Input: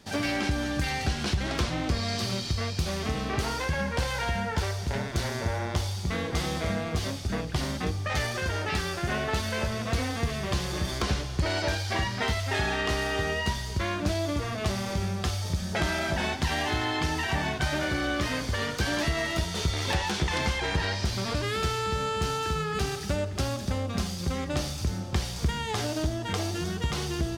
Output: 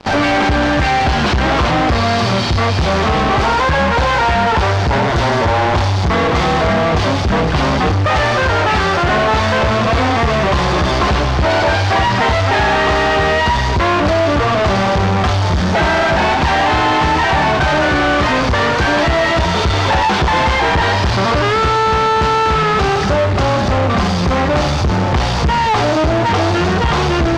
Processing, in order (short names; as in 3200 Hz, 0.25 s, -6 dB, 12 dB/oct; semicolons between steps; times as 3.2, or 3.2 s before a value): bell 930 Hz +9.5 dB 1.4 oct; in parallel at -0.5 dB: fuzz box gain 45 dB, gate -47 dBFS; on the sum: air absorption 160 m